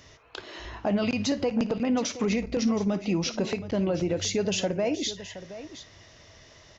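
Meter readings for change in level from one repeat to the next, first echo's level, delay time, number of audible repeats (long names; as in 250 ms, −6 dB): repeats not evenly spaced, −17.5 dB, 55 ms, 2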